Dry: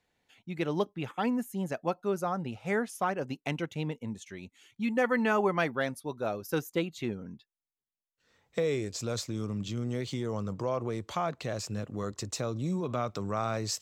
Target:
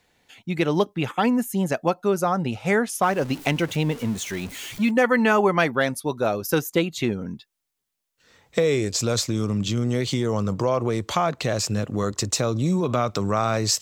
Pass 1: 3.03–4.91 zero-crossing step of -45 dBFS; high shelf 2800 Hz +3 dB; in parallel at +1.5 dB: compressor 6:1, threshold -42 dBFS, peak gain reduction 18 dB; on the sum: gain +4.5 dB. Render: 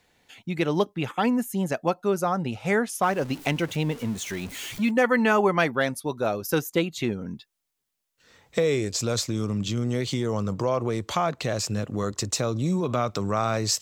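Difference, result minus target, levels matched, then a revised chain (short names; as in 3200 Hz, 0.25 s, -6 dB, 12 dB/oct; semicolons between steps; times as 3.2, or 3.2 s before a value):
compressor: peak gain reduction +9 dB
3.03–4.91 zero-crossing step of -45 dBFS; high shelf 2800 Hz +3 dB; in parallel at +1.5 dB: compressor 6:1, threshold -31.5 dBFS, peak gain reduction 9.5 dB; on the sum: gain +4.5 dB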